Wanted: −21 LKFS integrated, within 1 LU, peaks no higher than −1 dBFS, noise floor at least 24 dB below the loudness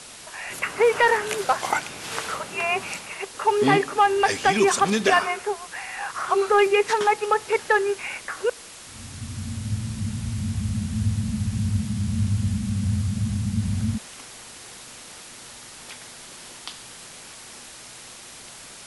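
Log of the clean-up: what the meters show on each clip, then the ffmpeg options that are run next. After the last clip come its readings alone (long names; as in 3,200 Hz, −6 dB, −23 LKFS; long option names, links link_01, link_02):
background noise floor −43 dBFS; target noise floor −48 dBFS; integrated loudness −23.5 LKFS; sample peak −8.5 dBFS; target loudness −21.0 LKFS
→ -af "afftdn=noise_reduction=6:noise_floor=-43"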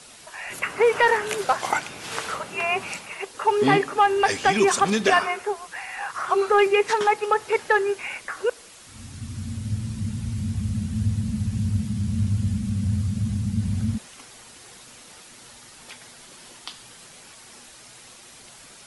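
background noise floor −47 dBFS; target noise floor −48 dBFS
→ -af "afftdn=noise_reduction=6:noise_floor=-47"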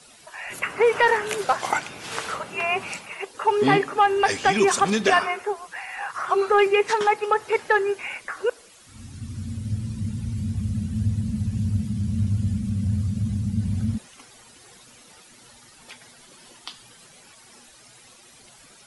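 background noise floor −51 dBFS; integrated loudness −23.5 LKFS; sample peak −8.5 dBFS; target loudness −21.0 LKFS
→ -af "volume=2.5dB"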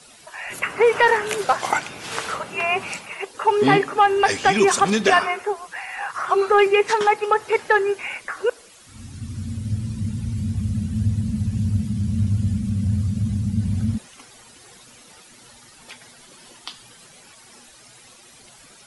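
integrated loudness −21.0 LKFS; sample peak −6.0 dBFS; background noise floor −48 dBFS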